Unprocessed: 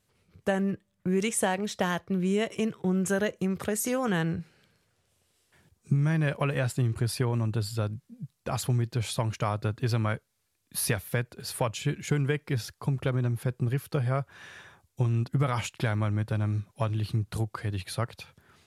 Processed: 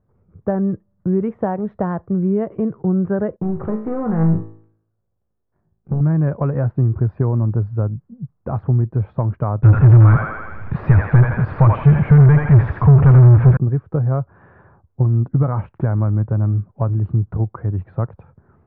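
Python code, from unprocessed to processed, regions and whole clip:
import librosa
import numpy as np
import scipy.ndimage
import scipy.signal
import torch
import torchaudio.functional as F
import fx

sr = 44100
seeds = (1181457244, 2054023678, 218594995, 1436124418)

y = fx.chain(x, sr, fx.leveller(passes=3),
    fx.comb_fb(f0_hz=54.0, decay_s=0.58, harmonics='all', damping=0.0, mix_pct=80),
    fx.doppler_dist(depth_ms=0.25), at=(3.36, 6.01))
y = fx.chain(y, sr, fx.curve_eq(hz=(150.0, 320.0, 2300.0, 12000.0), db=(0, -18, 7, -5)),
    fx.echo_thinned(ms=82, feedback_pct=46, hz=730.0, wet_db=-4.0),
    fx.power_curve(exponent=0.35), at=(9.63, 13.57))
y = scipy.signal.sosfilt(scipy.signal.butter(4, 1300.0, 'lowpass', fs=sr, output='sos'), y)
y = fx.tilt_eq(y, sr, slope=-2.0)
y = y * 10.0 ** (4.5 / 20.0)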